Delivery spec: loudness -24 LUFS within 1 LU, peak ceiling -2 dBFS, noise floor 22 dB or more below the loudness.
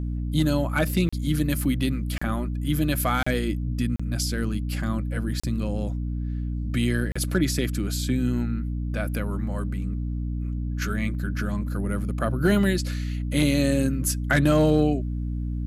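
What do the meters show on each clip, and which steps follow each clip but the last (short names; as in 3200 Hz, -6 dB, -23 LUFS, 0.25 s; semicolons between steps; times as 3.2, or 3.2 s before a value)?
dropouts 6; longest dropout 35 ms; hum 60 Hz; harmonics up to 300 Hz; hum level -26 dBFS; loudness -25.5 LUFS; peak -9.0 dBFS; loudness target -24.0 LUFS
-> interpolate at 1.09/2.18/3.23/3.96/5.4/7.12, 35 ms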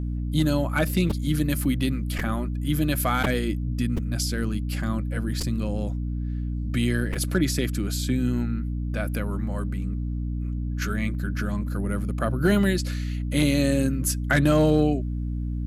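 dropouts 0; hum 60 Hz; harmonics up to 300 Hz; hum level -26 dBFS
-> notches 60/120/180/240/300 Hz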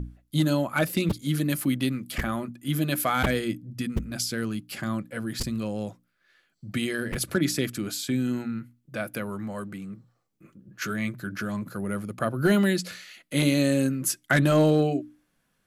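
hum none; loudness -27.0 LUFS; peak -10.5 dBFS; loudness target -24.0 LUFS
-> gain +3 dB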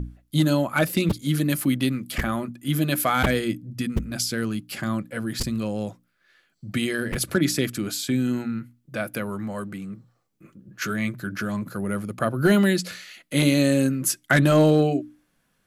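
loudness -24.0 LUFS; peak -7.5 dBFS; noise floor -70 dBFS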